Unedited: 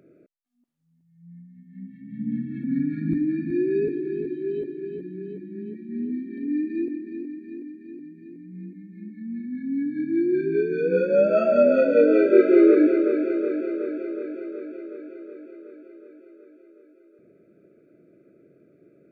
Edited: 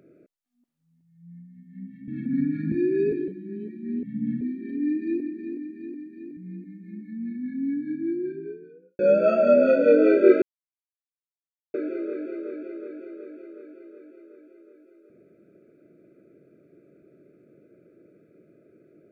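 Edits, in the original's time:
2.08–2.46 s: move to 6.09 s
3.10–3.48 s: delete
4.04–5.34 s: delete
8.05–8.46 s: delete
9.41–11.08 s: studio fade out
12.51–13.83 s: mute

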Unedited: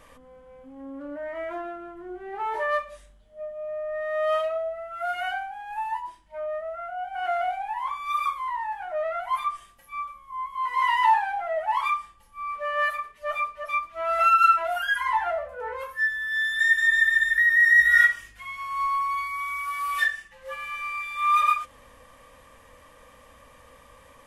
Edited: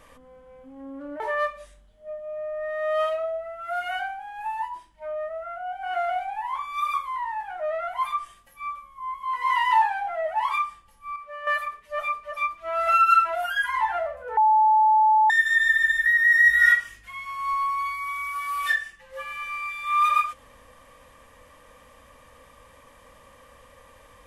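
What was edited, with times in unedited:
1.20–2.52 s: delete
12.48–12.79 s: gain -8.5 dB
15.69–16.62 s: bleep 867 Hz -14.5 dBFS

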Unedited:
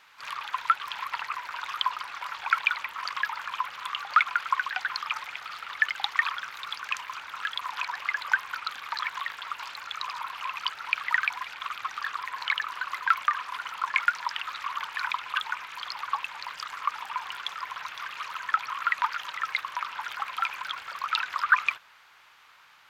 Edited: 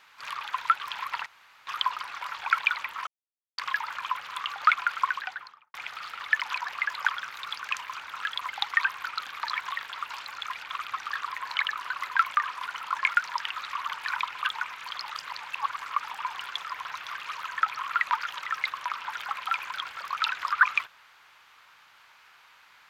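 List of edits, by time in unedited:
1.26–1.67 s: room tone
3.07 s: insert silence 0.51 s
4.53–5.23 s: studio fade out
5.91–6.27 s: swap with 7.69–8.34 s
9.98–11.40 s: delete
16.02–16.68 s: reverse

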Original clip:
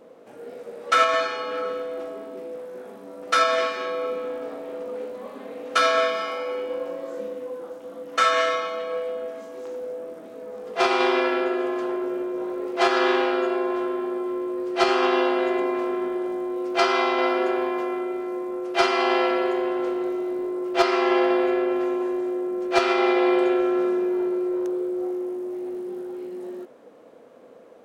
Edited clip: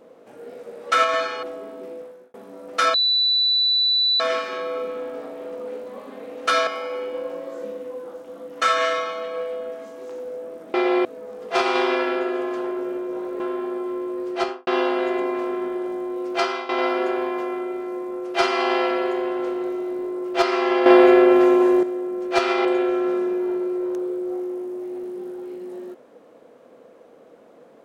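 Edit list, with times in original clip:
1.43–1.97 s: delete
2.47–2.88 s: fade out
3.48 s: add tone 3.97 kHz -16 dBFS 1.26 s
5.95–6.23 s: delete
12.65–13.80 s: delete
14.69–15.07 s: studio fade out
16.73–17.09 s: fade out linear, to -14.5 dB
21.26–22.23 s: gain +9.5 dB
23.05–23.36 s: move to 10.30 s

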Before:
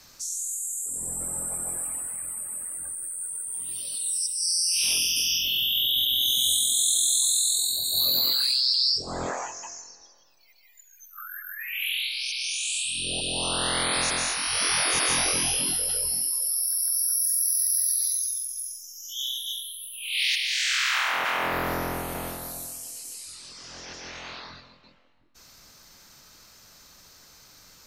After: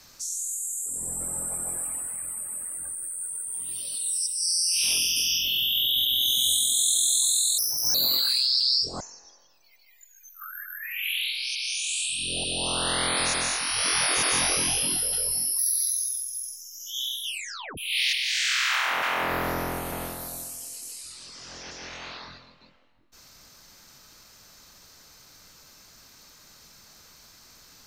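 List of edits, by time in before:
7.58–8.08 s: speed 137%
9.14–9.77 s: delete
16.35–17.81 s: delete
19.46 s: tape stop 0.54 s

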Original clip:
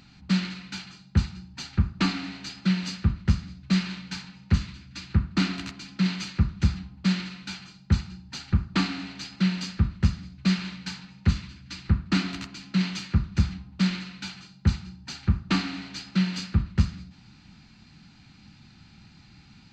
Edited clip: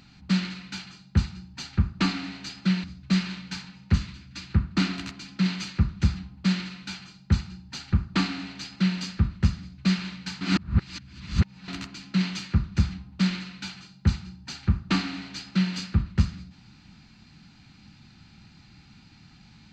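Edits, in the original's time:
2.84–3.44 s: delete
11.01–12.28 s: reverse

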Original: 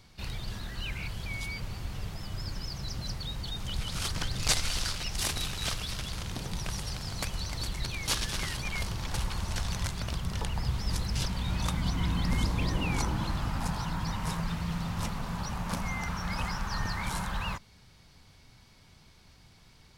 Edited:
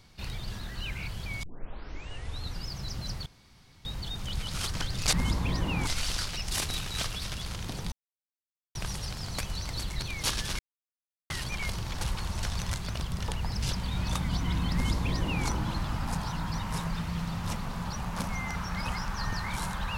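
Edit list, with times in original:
1.43 s: tape start 1.23 s
3.26 s: insert room tone 0.59 s
6.59 s: insert silence 0.83 s
8.43 s: insert silence 0.71 s
10.66–11.06 s: delete
12.26–13.00 s: copy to 4.54 s

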